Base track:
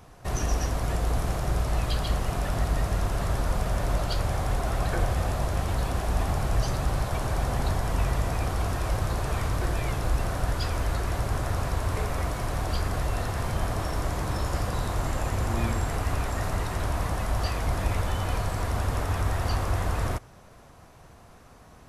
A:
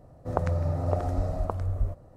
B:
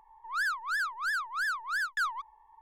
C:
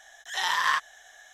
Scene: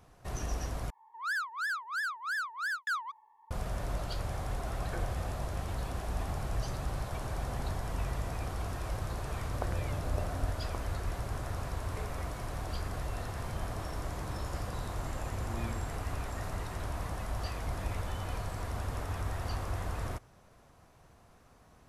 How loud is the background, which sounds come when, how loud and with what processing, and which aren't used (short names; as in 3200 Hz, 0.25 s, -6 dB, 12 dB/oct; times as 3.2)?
base track -9 dB
0.9 replace with B -3 dB + HPF 190 Hz
9.25 add A -11 dB
not used: C